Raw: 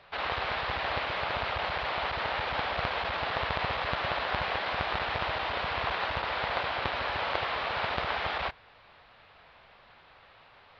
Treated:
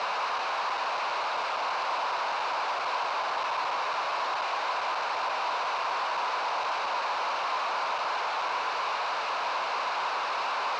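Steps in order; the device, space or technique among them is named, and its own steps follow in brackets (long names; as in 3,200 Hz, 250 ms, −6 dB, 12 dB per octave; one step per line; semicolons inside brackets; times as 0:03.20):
home computer beeper (sign of each sample alone; loudspeaker in its box 580–4,400 Hz, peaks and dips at 1,000 Hz +7 dB, 1,900 Hz −9 dB, 3,300 Hz −9 dB)
level +4 dB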